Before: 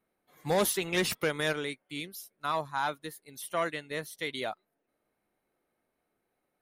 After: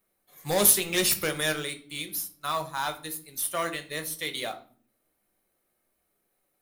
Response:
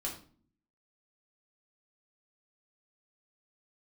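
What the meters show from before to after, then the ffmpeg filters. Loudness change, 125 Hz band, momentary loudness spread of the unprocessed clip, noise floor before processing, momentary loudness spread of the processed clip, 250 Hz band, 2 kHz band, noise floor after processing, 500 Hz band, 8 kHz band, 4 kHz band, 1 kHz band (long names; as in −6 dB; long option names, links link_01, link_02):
+5.5 dB, +1.0 dB, 15 LU, −82 dBFS, 16 LU, +1.5 dB, +2.0 dB, −76 dBFS, +0.5 dB, +12.0 dB, +6.0 dB, +1.0 dB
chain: -filter_complex "[0:a]crystalizer=i=3:c=0,acrusher=bits=4:mode=log:mix=0:aa=0.000001,asplit=2[link_01][link_02];[1:a]atrim=start_sample=2205,lowshelf=frequency=95:gain=8.5[link_03];[link_02][link_03]afir=irnorm=-1:irlink=0,volume=-3dB[link_04];[link_01][link_04]amix=inputs=2:normalize=0,volume=-4.5dB"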